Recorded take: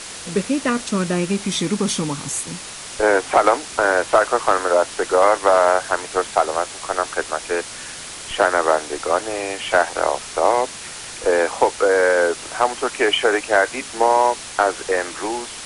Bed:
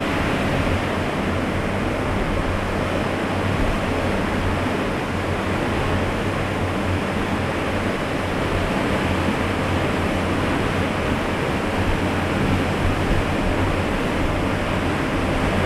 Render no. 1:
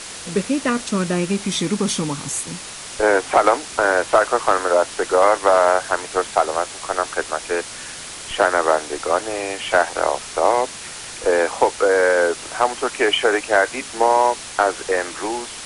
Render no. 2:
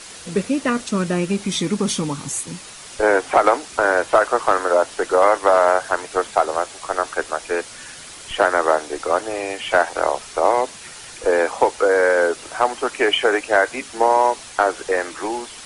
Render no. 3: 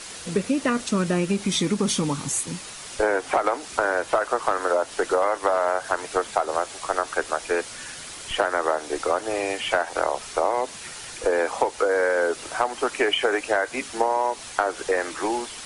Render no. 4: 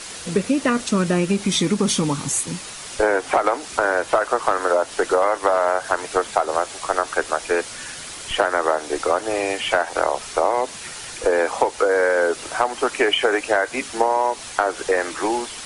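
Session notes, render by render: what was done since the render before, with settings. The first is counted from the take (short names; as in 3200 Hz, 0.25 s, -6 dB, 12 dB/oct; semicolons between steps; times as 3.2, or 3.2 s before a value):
nothing audible
denoiser 6 dB, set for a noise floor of -34 dBFS
compressor, threshold -18 dBFS, peak gain reduction 9 dB
gain +3.5 dB; limiter -3 dBFS, peak gain reduction 1 dB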